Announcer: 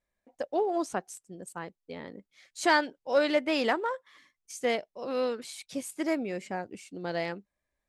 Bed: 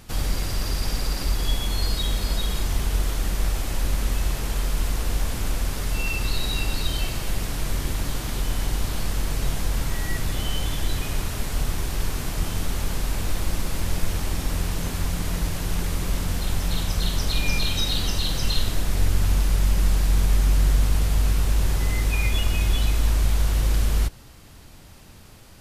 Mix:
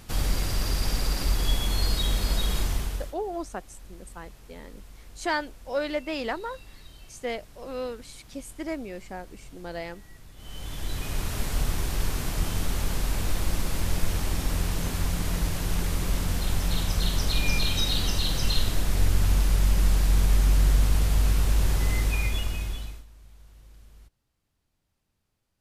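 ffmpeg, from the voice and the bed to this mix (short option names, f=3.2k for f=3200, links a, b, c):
-filter_complex "[0:a]adelay=2600,volume=-3.5dB[a];[1:a]volume=20.5dB,afade=t=out:st=2.6:d=0.55:silence=0.0794328,afade=t=in:st=10.36:d=1.04:silence=0.0841395,afade=t=out:st=21.95:d=1.1:silence=0.0354813[b];[a][b]amix=inputs=2:normalize=0"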